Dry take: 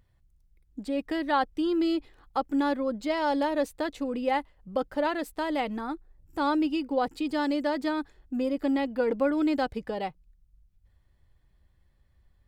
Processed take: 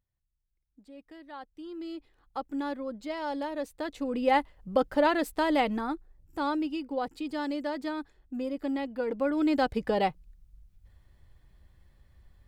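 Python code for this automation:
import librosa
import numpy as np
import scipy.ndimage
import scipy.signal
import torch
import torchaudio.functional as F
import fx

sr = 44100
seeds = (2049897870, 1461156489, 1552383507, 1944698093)

y = fx.gain(x, sr, db=fx.line((1.33, -19.0), (2.38, -7.0), (3.64, -7.0), (4.37, 3.5), (5.62, 3.5), (6.65, -5.0), (9.09, -5.0), (9.96, 6.0)))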